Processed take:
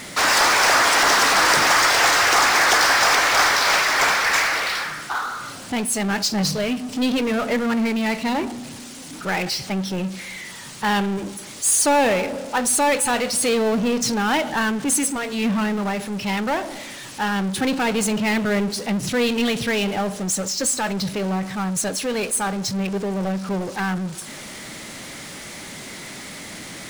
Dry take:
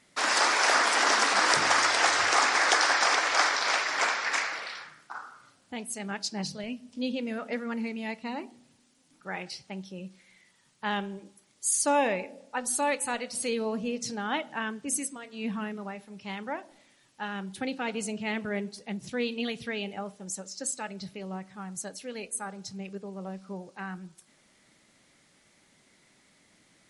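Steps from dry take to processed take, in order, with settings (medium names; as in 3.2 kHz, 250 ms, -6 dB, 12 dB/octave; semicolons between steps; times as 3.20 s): 6.41–7.32 s: comb 6.7 ms, depth 46%; power-law waveshaper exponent 0.5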